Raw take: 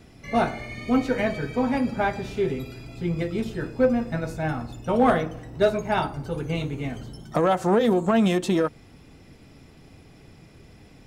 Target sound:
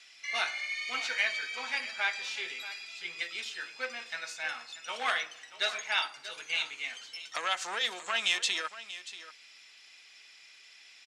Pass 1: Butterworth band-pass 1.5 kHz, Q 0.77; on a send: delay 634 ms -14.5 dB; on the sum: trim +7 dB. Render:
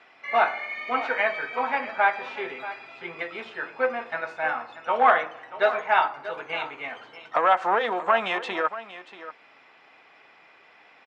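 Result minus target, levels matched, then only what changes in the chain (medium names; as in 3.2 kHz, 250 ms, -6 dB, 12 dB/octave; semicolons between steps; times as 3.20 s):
4 kHz band -14.0 dB
change: Butterworth band-pass 4 kHz, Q 0.77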